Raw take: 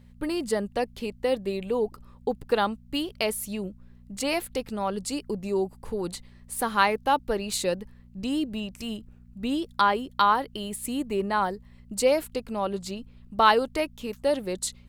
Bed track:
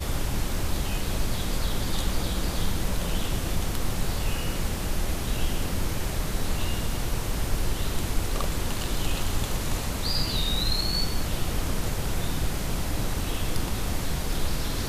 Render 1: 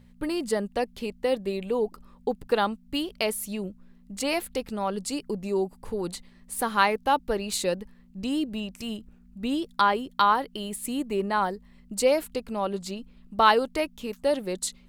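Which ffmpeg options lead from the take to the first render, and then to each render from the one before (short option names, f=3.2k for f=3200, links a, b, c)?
-af "bandreject=f=60:t=h:w=4,bandreject=f=120:t=h:w=4"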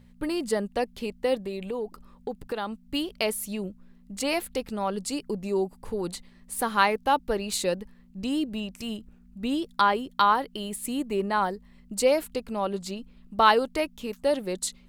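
-filter_complex "[0:a]asettb=1/sr,asplit=3[a][b][c];[a]atrim=end=1.404[d];[b]atrim=start=1.4:end=2.84,asetpts=PTS-STARTPTS,afade=t=in:d=0.004:c=qsin,afade=t=out:st=1.436:d=0.004:c=qsin,acompressor=threshold=-30dB:ratio=2.5:attack=3.2:release=140:knee=1:detection=peak[e];[c]atrim=start=2.836[f];[d][e]acrossfade=d=0.004:c1=hsin:c2=qsin[g];[g][f]acrossfade=d=0.004:c1=qsin:c2=hsin"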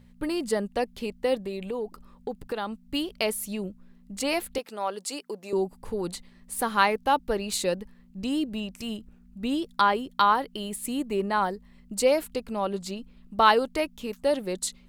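-filter_complex "[0:a]asettb=1/sr,asplit=3[a][b][c];[a]atrim=end=4.584[d];[b]atrim=start=4.58:end=5.53,asetpts=PTS-STARTPTS,afade=t=in:d=0.004:c=qsin,afade=t=out:st=0.946:d=0.004:c=qsin,highpass=430[e];[c]atrim=start=5.526[f];[d][e]acrossfade=d=0.004:c1=hsin:c2=qsin[g];[g][f]acrossfade=d=0.004:c1=qsin:c2=hsin"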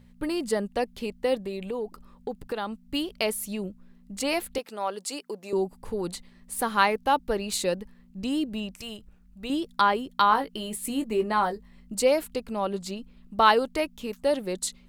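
-filter_complex "[0:a]asettb=1/sr,asplit=3[a][b][c];[a]atrim=end=8.744[d];[b]atrim=start=8.74:end=9.5,asetpts=PTS-STARTPTS,afade=t=in:d=0.004:c=qsin,afade=t=out:st=0.756:d=0.004:c=qsin,equalizer=f=250:t=o:w=0.91:g=-10.5[e];[c]atrim=start=9.496[f];[d][e]acrossfade=d=0.004:c1=hsin:c2=qsin[g];[g][f]acrossfade=d=0.004:c1=qsin:c2=hsin,asettb=1/sr,asplit=3[h][i][j];[h]atrim=end=10.294[k];[i]atrim=start=10.29:end=11.95,asetpts=PTS-STARTPTS,afade=t=in:d=0.004:c=qsin,afade=t=out:st=1.656:d=0.004:c=qsin,asplit=2[l][m];[m]adelay=18,volume=-7dB[n];[l][n]amix=inputs=2:normalize=0,atrim=end_sample=73206[o];[j]atrim=start=11.946[p];[k][o]acrossfade=d=0.004:c1=hsin:c2=qsin[q];[q][p]acrossfade=d=0.004:c1=qsin:c2=hsin"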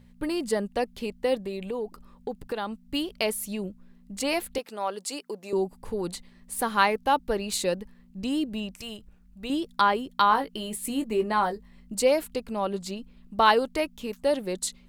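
-af "bandreject=f=1.3k:w=28"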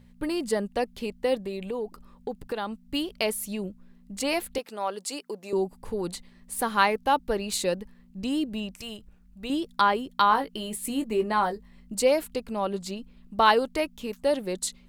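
-af anull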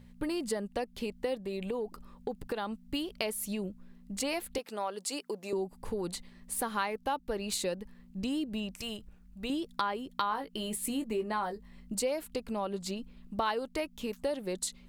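-af "acompressor=threshold=-32dB:ratio=3"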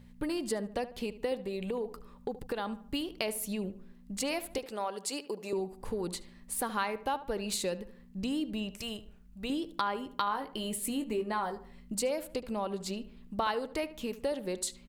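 -filter_complex "[0:a]asplit=2[a][b];[b]adelay=74,lowpass=f=2.4k:p=1,volume=-14dB,asplit=2[c][d];[d]adelay=74,lowpass=f=2.4k:p=1,volume=0.42,asplit=2[e][f];[f]adelay=74,lowpass=f=2.4k:p=1,volume=0.42,asplit=2[g][h];[h]adelay=74,lowpass=f=2.4k:p=1,volume=0.42[i];[a][c][e][g][i]amix=inputs=5:normalize=0"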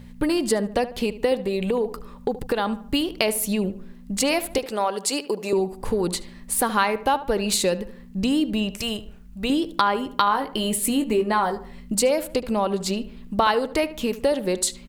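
-af "volume=11.5dB"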